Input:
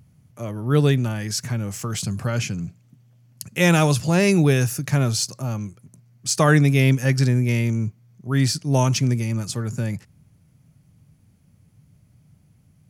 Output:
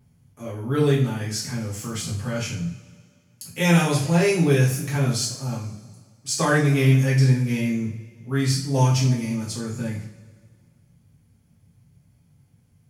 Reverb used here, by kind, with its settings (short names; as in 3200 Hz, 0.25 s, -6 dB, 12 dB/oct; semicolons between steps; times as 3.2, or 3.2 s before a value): two-slope reverb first 0.44 s, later 1.9 s, from -18 dB, DRR -7 dB; gain -9.5 dB